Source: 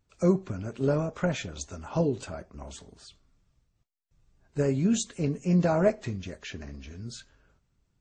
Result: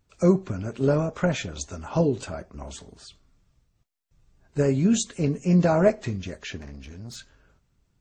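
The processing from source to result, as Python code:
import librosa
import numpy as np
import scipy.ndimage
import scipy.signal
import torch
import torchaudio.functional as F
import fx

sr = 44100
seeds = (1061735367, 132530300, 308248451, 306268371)

y = fx.tube_stage(x, sr, drive_db=38.0, bias=0.45, at=(6.57, 7.15), fade=0.02)
y = F.gain(torch.from_numpy(y), 4.0).numpy()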